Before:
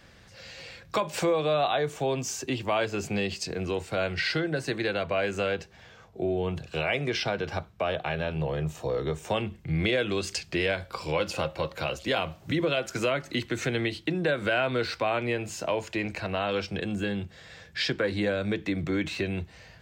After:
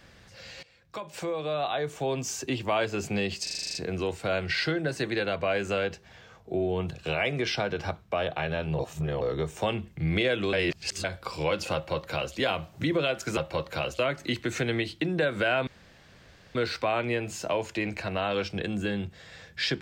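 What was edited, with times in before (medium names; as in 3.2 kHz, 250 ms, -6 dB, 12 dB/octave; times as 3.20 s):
0.63–2.39 s: fade in, from -18.5 dB
3.43 s: stutter 0.04 s, 9 plays
8.47–8.89 s: reverse
10.21–10.72 s: reverse
11.42–12.04 s: copy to 13.05 s
14.73 s: insert room tone 0.88 s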